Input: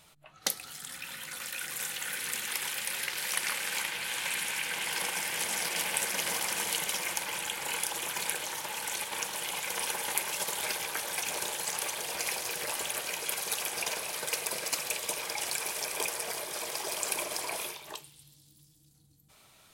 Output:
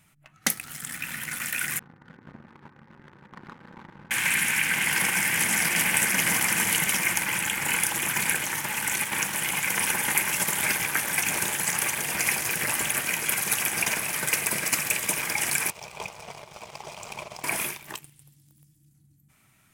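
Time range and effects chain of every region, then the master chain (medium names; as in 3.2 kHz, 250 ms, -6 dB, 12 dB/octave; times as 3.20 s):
1.79–4.11 s: inverse Chebyshev low-pass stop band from 4.2 kHz, stop band 70 dB + peaking EQ 670 Hz -14 dB 0.37 oct
15.70–17.44 s: distance through air 160 m + static phaser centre 710 Hz, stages 4
whole clip: ten-band graphic EQ 125 Hz +7 dB, 250 Hz +6 dB, 500 Hz -10 dB, 1 kHz -3 dB, 2 kHz +6 dB, 4 kHz -11 dB; waveshaping leveller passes 2; trim +2 dB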